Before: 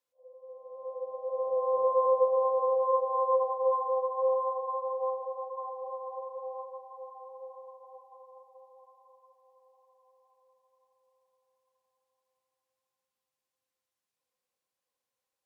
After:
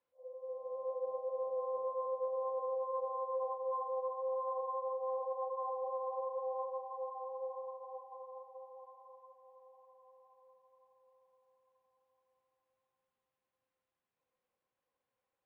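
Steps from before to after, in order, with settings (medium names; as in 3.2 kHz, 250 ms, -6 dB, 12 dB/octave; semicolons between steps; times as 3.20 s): reverse; compression 12:1, threshold -38 dBFS, peak gain reduction 18.5 dB; reverse; distance through air 470 m; trim +5 dB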